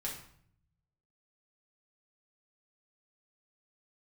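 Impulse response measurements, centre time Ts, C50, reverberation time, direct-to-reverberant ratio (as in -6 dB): 31 ms, 5.5 dB, 0.60 s, -4.5 dB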